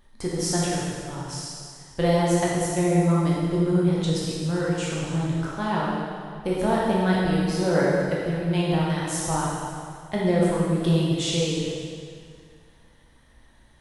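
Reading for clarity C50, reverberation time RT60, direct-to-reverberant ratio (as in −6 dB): −2.0 dB, 2.1 s, −6.0 dB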